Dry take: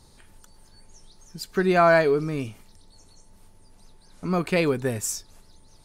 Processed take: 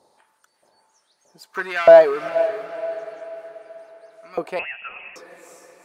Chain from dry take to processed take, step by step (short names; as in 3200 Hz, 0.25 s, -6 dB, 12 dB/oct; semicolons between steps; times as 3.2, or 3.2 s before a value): 1.54–2.29 sample leveller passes 2; LFO high-pass saw up 1.6 Hz 550–2200 Hz; tilt shelf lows +9 dB, about 760 Hz; on a send: diffused feedback echo 0.452 s, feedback 46%, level -11.5 dB; 4.59–5.16 on the sum: inverted band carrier 3100 Hz; gain -1 dB